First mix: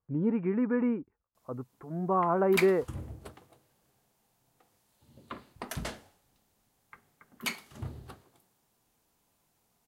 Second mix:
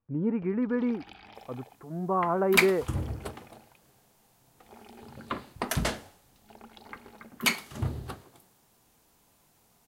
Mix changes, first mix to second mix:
first sound: unmuted; second sound +8.5 dB

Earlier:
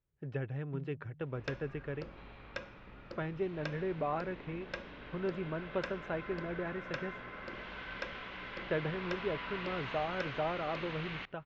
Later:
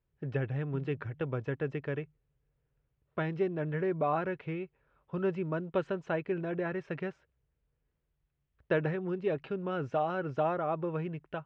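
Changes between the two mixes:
speech +5.0 dB; second sound: muted

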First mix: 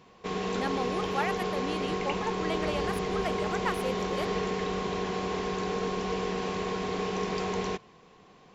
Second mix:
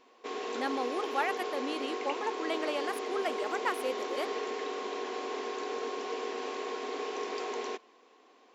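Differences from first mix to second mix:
background -4.0 dB; master: add brick-wall FIR high-pass 230 Hz

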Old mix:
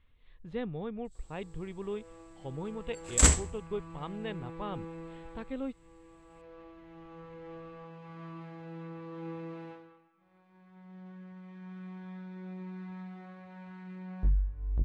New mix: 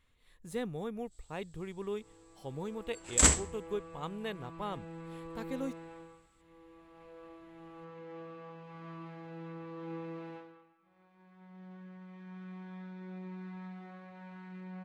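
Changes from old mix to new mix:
speech: remove Chebyshev low-pass 3300 Hz, order 3; first sound: entry +0.65 s; master: add low shelf 95 Hz -9.5 dB

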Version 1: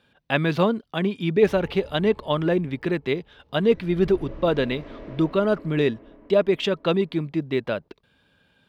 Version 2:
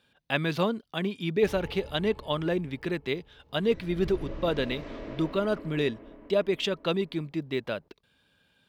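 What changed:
speech -6.5 dB; master: add high shelf 3400 Hz +9 dB

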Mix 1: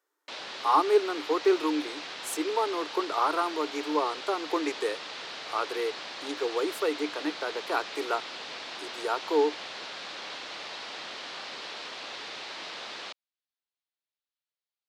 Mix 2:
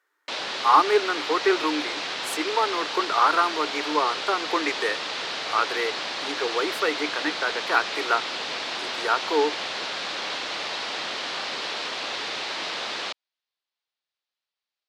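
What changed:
speech: add bell 1800 Hz +12.5 dB 1.5 oct; background +9.0 dB

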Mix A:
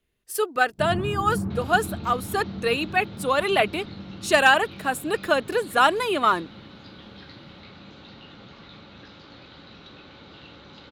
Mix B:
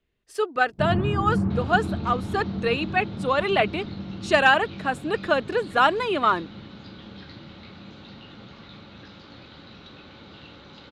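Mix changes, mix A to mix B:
speech: add air absorption 100 m; first sound +4.5 dB

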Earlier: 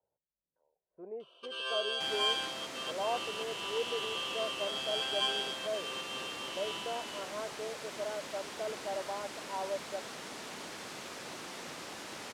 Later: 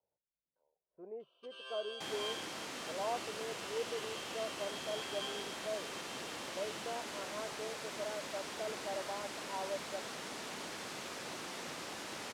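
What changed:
speech -3.5 dB; first sound -12.0 dB

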